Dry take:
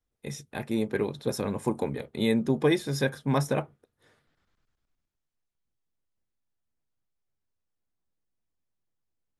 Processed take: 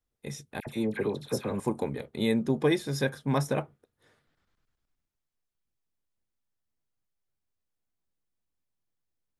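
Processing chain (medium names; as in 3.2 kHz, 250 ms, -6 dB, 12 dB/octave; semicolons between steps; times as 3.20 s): 0.60–1.60 s: phase dispersion lows, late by 64 ms, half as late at 1.4 kHz; trim -1.5 dB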